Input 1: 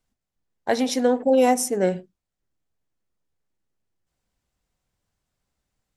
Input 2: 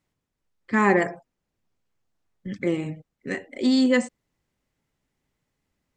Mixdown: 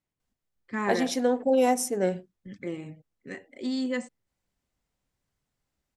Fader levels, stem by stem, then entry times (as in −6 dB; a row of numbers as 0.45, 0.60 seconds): −4.5, −10.0 decibels; 0.20, 0.00 seconds